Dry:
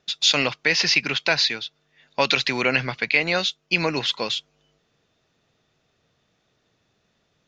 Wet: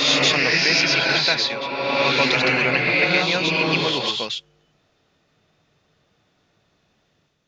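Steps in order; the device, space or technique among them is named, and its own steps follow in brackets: reverse reverb (reverse; reverb RT60 2.7 s, pre-delay 0.119 s, DRR -5 dB; reverse); gain -2 dB

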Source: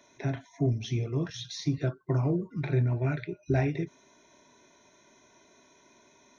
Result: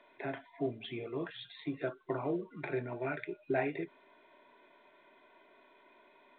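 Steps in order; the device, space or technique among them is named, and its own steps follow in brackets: telephone (BPF 390–3100 Hz; µ-law 64 kbps 8000 Hz)

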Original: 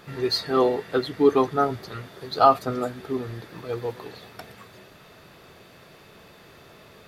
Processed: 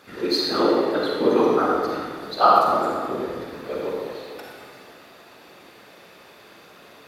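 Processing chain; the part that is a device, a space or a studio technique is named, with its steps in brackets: whispering ghost (whisperiser; HPF 350 Hz 6 dB/oct; reverb RT60 1.7 s, pre-delay 37 ms, DRR -2.5 dB); gain -1 dB

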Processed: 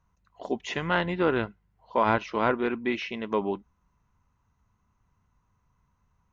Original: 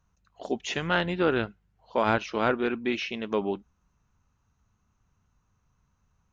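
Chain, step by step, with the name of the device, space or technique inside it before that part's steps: inside a helmet (high shelf 3500 Hz -7 dB; small resonant body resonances 1000/2000 Hz, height 8 dB, ringing for 25 ms)

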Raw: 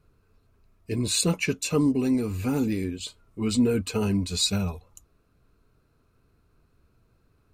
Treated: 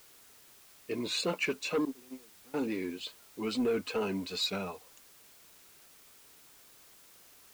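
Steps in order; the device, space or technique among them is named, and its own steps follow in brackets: 1.85–2.54 gate -19 dBFS, range -29 dB; tape answering machine (BPF 370–3400 Hz; soft clip -23 dBFS, distortion -16 dB; wow and flutter; white noise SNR 21 dB)

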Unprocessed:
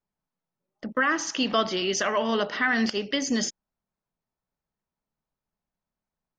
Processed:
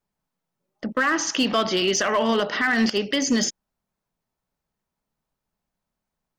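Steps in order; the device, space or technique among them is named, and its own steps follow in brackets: limiter into clipper (limiter -17 dBFS, peak gain reduction 4.5 dB; hard clip -19.5 dBFS, distortion -24 dB); gain +5.5 dB

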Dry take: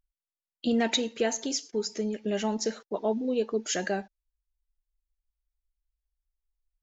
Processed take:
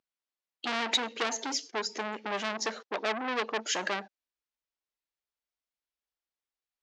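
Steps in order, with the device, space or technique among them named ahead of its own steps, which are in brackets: public-address speaker with an overloaded transformer (core saturation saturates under 4000 Hz; BPF 260–5300 Hz); gain +3.5 dB

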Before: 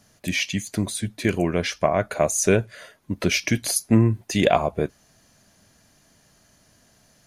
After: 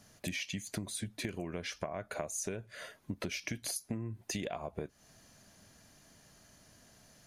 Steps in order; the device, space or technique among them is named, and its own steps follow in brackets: serial compression, leveller first (compressor 2.5:1, threshold -22 dBFS, peak gain reduction 8 dB; compressor 6:1, threshold -33 dBFS, peak gain reduction 14.5 dB); gain -2.5 dB

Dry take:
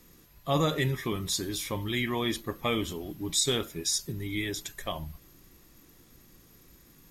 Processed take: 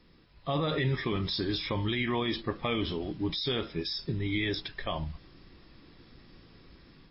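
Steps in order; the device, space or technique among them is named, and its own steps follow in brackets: low-bitrate web radio (AGC gain up to 6 dB; limiter -18 dBFS, peak gain reduction 10 dB; gain -2 dB; MP3 24 kbps 12000 Hz)

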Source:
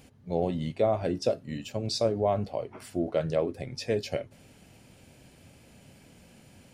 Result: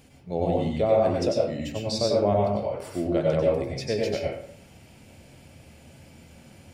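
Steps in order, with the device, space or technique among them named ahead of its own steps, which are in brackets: bathroom (reverb RT60 0.60 s, pre-delay 90 ms, DRR -2.5 dB)

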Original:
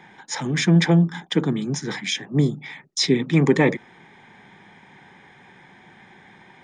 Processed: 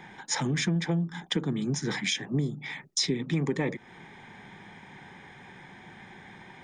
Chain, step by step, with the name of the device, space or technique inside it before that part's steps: ASMR close-microphone chain (low shelf 100 Hz +7.5 dB; compressor 5:1, threshold -26 dBFS, peak gain reduction 15 dB; high shelf 7600 Hz +4 dB)

